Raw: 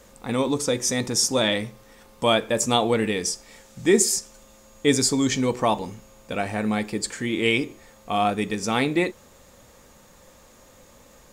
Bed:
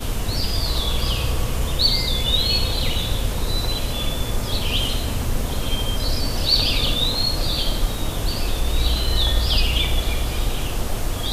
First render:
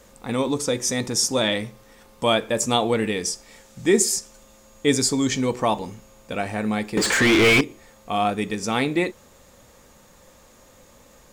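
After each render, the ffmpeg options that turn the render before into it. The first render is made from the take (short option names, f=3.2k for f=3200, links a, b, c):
-filter_complex "[0:a]asettb=1/sr,asplit=3[a][b][c];[a]atrim=end=6.974[d];[b]atrim=start=6.97:end=7.61,asetpts=PTS-STARTPTS,afade=t=in:d=0.004:c=qsin,afade=t=out:st=0.636:d=0.004:c=qsin,asplit=2[e][f];[f]highpass=f=720:p=1,volume=32dB,asoftclip=type=tanh:threshold=-8dB[g];[e][g]amix=inputs=2:normalize=0,lowpass=f=2.9k:p=1,volume=-6dB[h];[c]atrim=start=7.606[i];[d][h]acrossfade=d=0.004:c1=hsin:c2=qsin[j];[j][i]acrossfade=d=0.004:c1=qsin:c2=hsin"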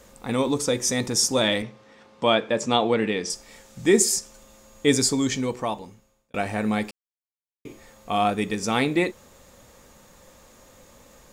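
-filter_complex "[0:a]asettb=1/sr,asplit=3[a][b][c];[a]atrim=end=1.624[d];[b]atrim=start=1.62:end=3.3,asetpts=PTS-STARTPTS,afade=t=in:d=0.004:c=qsin,afade=t=out:st=1.676:d=0.004:c=qsin,highpass=130,lowpass=4.4k[e];[c]atrim=start=3.296[f];[d][e]acrossfade=d=0.004:c1=hsin:c2=qsin[g];[g][f]acrossfade=d=0.004:c1=qsin:c2=hsin,asplit=4[h][i][j][k];[h]atrim=end=6.34,asetpts=PTS-STARTPTS,afade=t=out:st=5:d=1.34[l];[i]atrim=start=6.34:end=6.91,asetpts=PTS-STARTPTS,afade=t=in:d=0.004:c=hsin,afade=t=out:st=0.566:d=0.004:c=hsin[m];[j]atrim=start=6.91:end=7.65,asetpts=PTS-STARTPTS,volume=0[n];[k]atrim=start=7.65,asetpts=PTS-STARTPTS,afade=t=in:d=0.004:c=hsin[o];[l][m][n][o]concat=n=4:v=0:a=1"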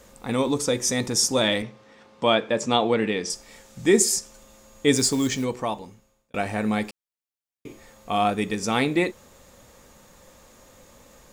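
-filter_complex "[0:a]asplit=3[a][b][c];[a]afade=t=out:st=4.94:d=0.02[d];[b]acrusher=bits=5:mode=log:mix=0:aa=0.000001,afade=t=in:st=4.94:d=0.02,afade=t=out:st=5.43:d=0.02[e];[c]afade=t=in:st=5.43:d=0.02[f];[d][e][f]amix=inputs=3:normalize=0"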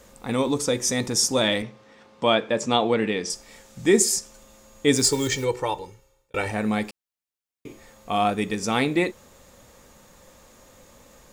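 -filter_complex "[0:a]asettb=1/sr,asplit=3[a][b][c];[a]atrim=end=5.044[d];[b]atrim=start=5.04:end=6.51,asetpts=PTS-STARTPTS,afade=t=in:d=0.004:c=qsin,afade=t=out:st=1.466:d=0.004:c=qsin,aecho=1:1:2.2:0.86,atrim=end_sample=64827[e];[c]atrim=start=6.506[f];[d][e]acrossfade=d=0.004:c1=hsin:c2=qsin[g];[g][f]acrossfade=d=0.004:c1=qsin:c2=hsin"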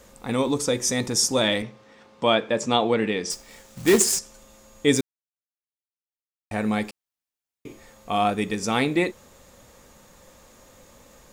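-filter_complex "[0:a]asettb=1/sr,asplit=3[a][b][c];[a]atrim=end=3.314[d];[b]atrim=start=3.31:end=4.19,asetpts=PTS-STARTPTS,afade=t=in:d=0.004:c=qsin,afade=t=out:st=0.876:d=0.004:c=qsin,acrusher=bits=2:mode=log:mix=0:aa=0.000001[e];[c]atrim=start=4.186[f];[d][e]acrossfade=d=0.004:c1=hsin:c2=qsin[g];[g][f]acrossfade=d=0.004:c1=qsin:c2=hsin,asplit=3[h][i][j];[h]atrim=end=5.01,asetpts=PTS-STARTPTS,afade=t=out:st=5.006:d=0.004:c=hsin[k];[i]atrim=start=5.01:end=6.51,asetpts=PTS-STARTPTS,volume=0[l];[j]atrim=start=6.51,asetpts=PTS-STARTPTS,afade=t=in:d=0.004:c=hsin[m];[k][l][m]concat=n=3:v=0:a=1"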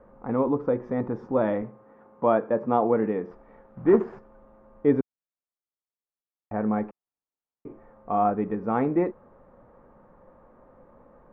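-af "lowpass=f=1.3k:w=0.5412,lowpass=f=1.3k:w=1.3066,equalizer=f=70:t=o:w=1.5:g=-7"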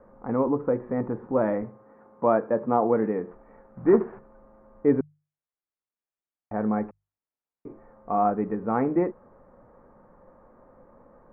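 -af "lowpass=f=2.2k:w=0.5412,lowpass=f=2.2k:w=1.3066,bandreject=f=50:t=h:w=6,bandreject=f=100:t=h:w=6,bandreject=f=150:t=h:w=6"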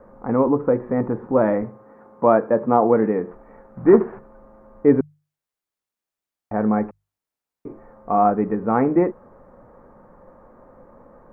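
-af "volume=6dB"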